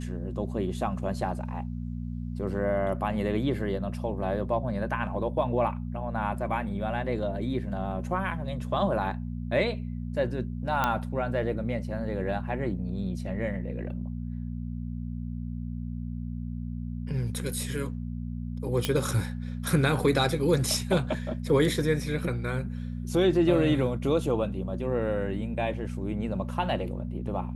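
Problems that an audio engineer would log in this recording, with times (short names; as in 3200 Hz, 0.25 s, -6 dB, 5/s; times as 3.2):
hum 60 Hz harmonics 4 -34 dBFS
10.84 pop -11 dBFS
18.85 pop -10 dBFS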